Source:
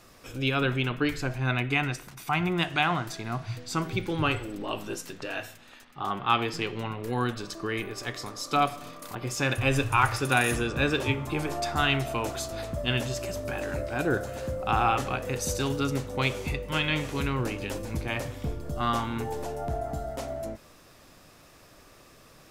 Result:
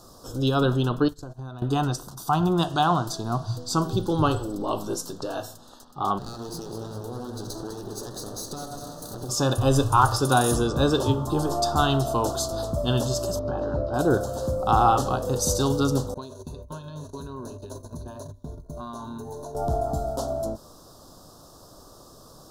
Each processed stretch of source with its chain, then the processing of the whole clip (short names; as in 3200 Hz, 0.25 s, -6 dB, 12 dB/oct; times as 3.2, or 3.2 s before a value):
1.08–1.62 gate -33 dBFS, range -20 dB + notch 5000 Hz, Q 11 + compressor 8:1, threshold -39 dBFS
6.18–9.29 minimum comb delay 0.47 ms + compressor 12:1, threshold -36 dBFS + echo with dull and thin repeats by turns 0.101 s, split 2000 Hz, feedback 76%, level -6 dB
13.39–13.94 air absorption 280 m + notch 3400 Hz, Q 23
16.14–19.55 gate -34 dBFS, range -29 dB + ripple EQ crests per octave 1.5, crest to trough 13 dB + compressor, threshold -39 dBFS
whole clip: Chebyshev band-stop 1100–4400 Hz, order 2; dynamic EQ 2600 Hz, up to +6 dB, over -52 dBFS, Q 1.7; gain +6.5 dB